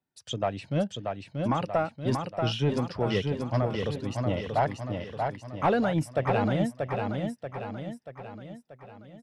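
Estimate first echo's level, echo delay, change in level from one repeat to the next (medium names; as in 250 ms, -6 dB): -4.5 dB, 634 ms, -6.0 dB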